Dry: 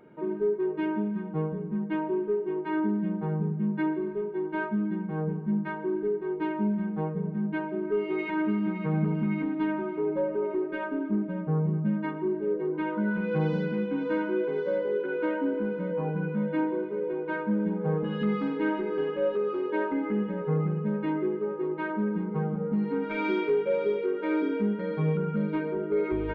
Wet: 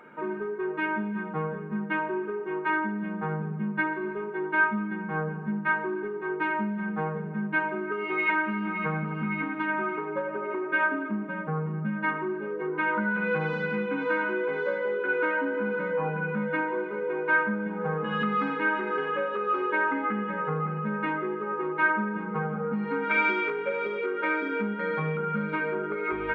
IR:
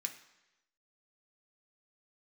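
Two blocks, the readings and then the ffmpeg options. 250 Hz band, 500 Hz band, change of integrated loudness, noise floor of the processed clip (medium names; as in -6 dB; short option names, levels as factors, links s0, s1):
-3.5 dB, -2.0 dB, +0.5 dB, -35 dBFS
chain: -filter_complex "[0:a]acompressor=threshold=0.0398:ratio=6,equalizer=f=1300:t=o:w=1.6:g=14,bandreject=f=60:t=h:w=6,bandreject=f=120:t=h:w=6,bandreject=f=180:t=h:w=6,bandreject=f=240:t=h:w=6,bandreject=f=300:t=h:w=6,bandreject=f=360:t=h:w=6,bandreject=f=420:t=h:w=6,asplit=2[s0][s1];[1:a]atrim=start_sample=2205[s2];[s1][s2]afir=irnorm=-1:irlink=0,volume=1.19[s3];[s0][s3]amix=inputs=2:normalize=0,volume=0.75"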